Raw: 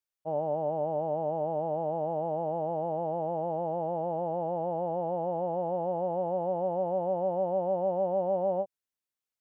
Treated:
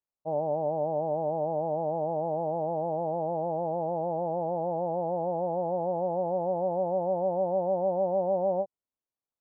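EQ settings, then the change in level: low-pass 1.1 kHz 24 dB/octave; +1.5 dB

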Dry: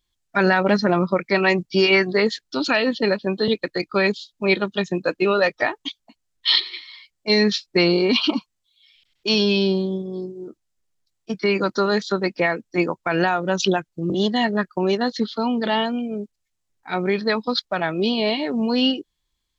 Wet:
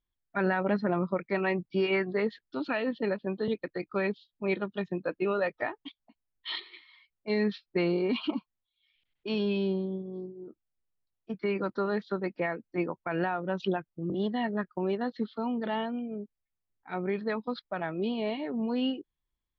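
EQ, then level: distance through air 430 m; -8.5 dB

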